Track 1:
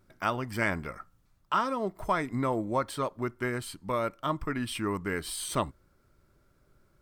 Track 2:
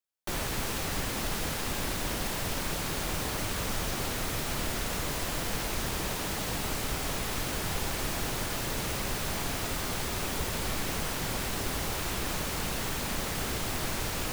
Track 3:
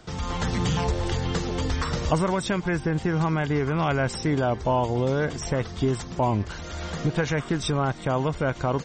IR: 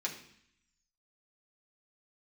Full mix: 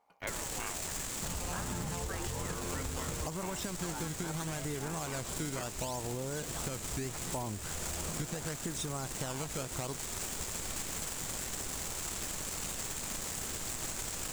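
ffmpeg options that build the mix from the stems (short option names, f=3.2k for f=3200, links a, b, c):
-filter_complex "[0:a]aeval=exprs='val(0)*sin(2*PI*550*n/s+550*0.5/0.36*sin(2*PI*0.36*n/s))':c=same,volume=-5.5dB[a];[1:a]acrusher=bits=6:dc=4:mix=0:aa=0.000001,volume=-6dB[b];[2:a]acrusher=samples=14:mix=1:aa=0.000001:lfo=1:lforange=22.4:lforate=0.75,adelay=1150,volume=-4dB[c];[b][c]amix=inputs=2:normalize=0,equalizer=f=7.5k:t=o:w=0.57:g=13,alimiter=limit=-18.5dB:level=0:latency=1:release=458,volume=0dB[d];[a][d]amix=inputs=2:normalize=0,acompressor=threshold=-34dB:ratio=6"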